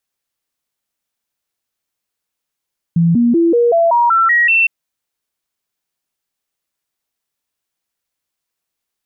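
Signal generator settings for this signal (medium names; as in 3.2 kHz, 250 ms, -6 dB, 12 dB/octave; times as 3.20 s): stepped sine 168 Hz up, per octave 2, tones 9, 0.19 s, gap 0.00 s -8.5 dBFS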